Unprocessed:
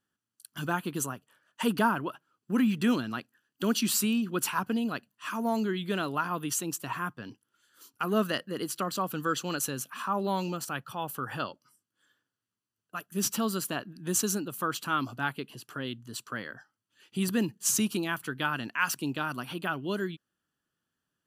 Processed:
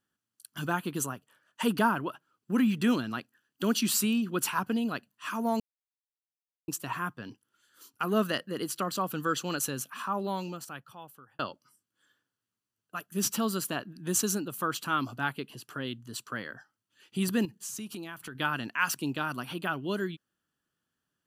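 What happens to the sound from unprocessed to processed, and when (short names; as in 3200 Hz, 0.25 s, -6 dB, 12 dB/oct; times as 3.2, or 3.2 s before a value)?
5.6–6.68 mute
9.84–11.39 fade out
17.45–18.35 compressor 4:1, threshold -38 dBFS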